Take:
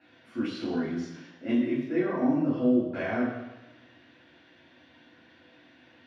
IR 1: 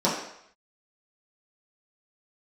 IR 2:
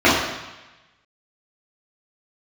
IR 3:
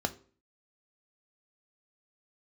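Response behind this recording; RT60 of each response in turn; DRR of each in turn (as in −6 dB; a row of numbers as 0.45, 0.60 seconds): 2; 0.70, 1.1, 0.45 seconds; −8.5, −10.5, 7.5 decibels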